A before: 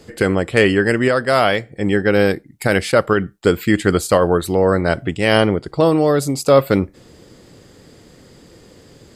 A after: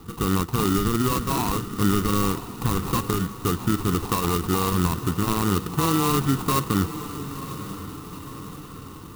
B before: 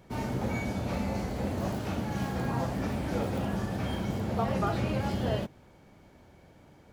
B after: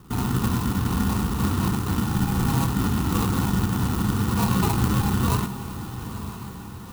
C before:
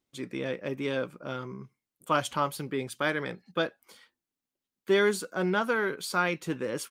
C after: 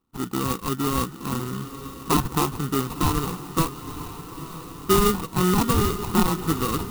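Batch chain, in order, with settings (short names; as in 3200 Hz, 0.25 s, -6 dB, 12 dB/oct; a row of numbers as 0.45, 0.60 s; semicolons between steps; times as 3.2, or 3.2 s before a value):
dynamic EQ 6000 Hz, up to -5 dB, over -43 dBFS, Q 1; in parallel at -1.5 dB: compressor, threshold -24 dBFS; on the sum: limiter -8 dBFS; sample-and-hold 27×; fixed phaser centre 2200 Hz, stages 6; on a send: diffused feedback echo 0.946 s, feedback 54%, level -12 dB; on the sum: clock jitter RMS 0.055 ms; match loudness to -24 LUFS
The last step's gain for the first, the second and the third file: -1.5, +5.0, +6.0 dB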